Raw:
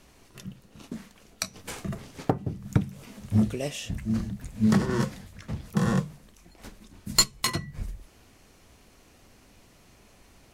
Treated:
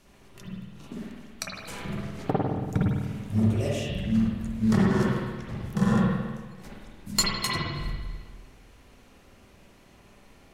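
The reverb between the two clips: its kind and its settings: spring tank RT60 1.4 s, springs 49/54 ms, chirp 30 ms, DRR -5 dB; trim -4 dB

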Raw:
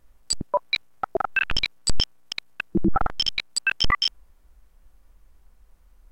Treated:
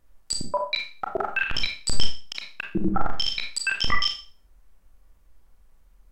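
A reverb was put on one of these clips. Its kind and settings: Schroeder reverb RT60 0.37 s, combs from 28 ms, DRR 2.5 dB; trim -3.5 dB

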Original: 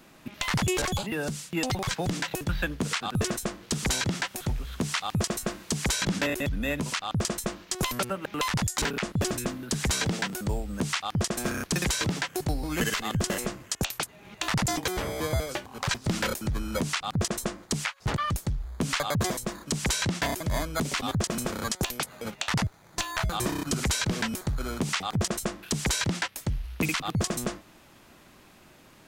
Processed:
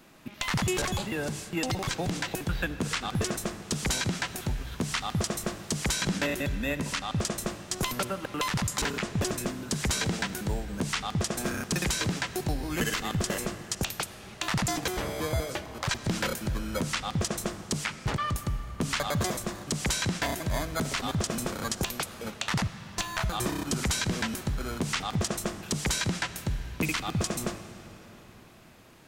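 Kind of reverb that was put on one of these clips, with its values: algorithmic reverb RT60 4.3 s, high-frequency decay 0.8×, pre-delay 15 ms, DRR 11.5 dB; trim -1.5 dB

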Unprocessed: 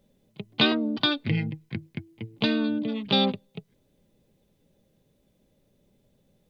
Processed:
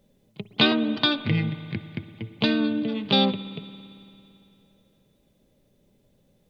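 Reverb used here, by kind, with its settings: spring tank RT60 2.8 s, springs 56 ms, chirp 75 ms, DRR 13 dB; trim +2 dB

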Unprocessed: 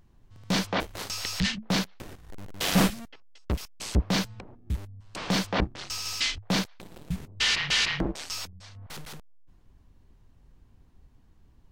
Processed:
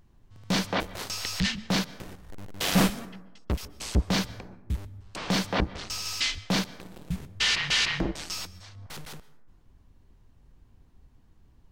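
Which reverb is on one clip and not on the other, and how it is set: plate-style reverb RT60 1 s, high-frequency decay 0.4×, pre-delay 115 ms, DRR 18 dB

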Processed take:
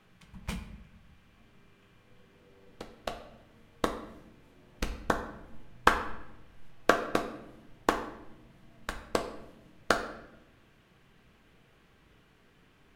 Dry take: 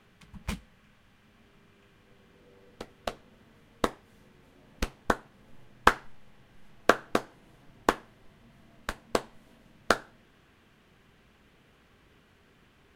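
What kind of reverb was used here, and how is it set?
simulated room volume 340 m³, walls mixed, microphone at 0.59 m; trim -2.5 dB

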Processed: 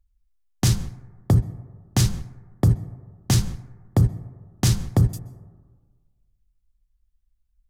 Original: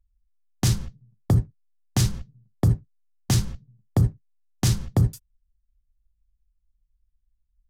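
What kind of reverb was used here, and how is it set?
plate-style reverb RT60 1.5 s, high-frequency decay 0.25×, pre-delay 115 ms, DRR 19.5 dB; trim +2 dB

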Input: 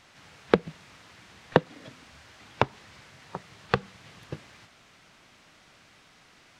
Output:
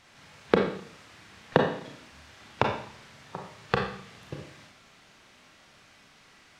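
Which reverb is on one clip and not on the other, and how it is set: Schroeder reverb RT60 0.59 s, combs from 28 ms, DRR 1 dB; trim -2 dB

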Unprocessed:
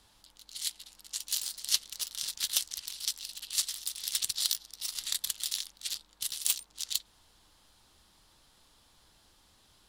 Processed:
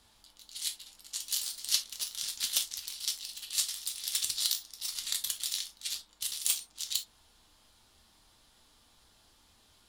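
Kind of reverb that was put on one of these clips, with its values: gated-style reverb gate 90 ms falling, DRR 4.5 dB; trim -1.5 dB

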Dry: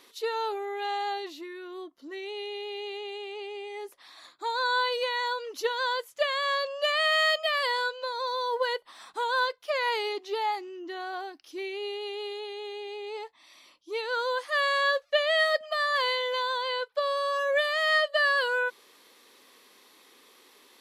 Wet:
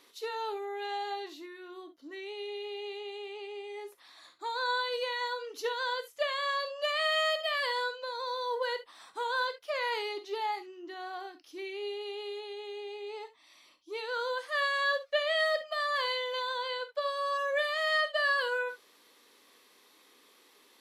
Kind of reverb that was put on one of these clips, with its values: gated-style reverb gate 90 ms flat, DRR 8.5 dB; trim -5 dB

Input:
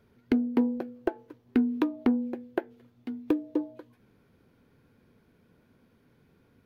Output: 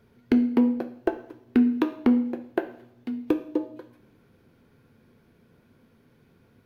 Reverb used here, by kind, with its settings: two-slope reverb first 0.61 s, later 2.4 s, from -26 dB, DRR 7.5 dB; trim +3 dB

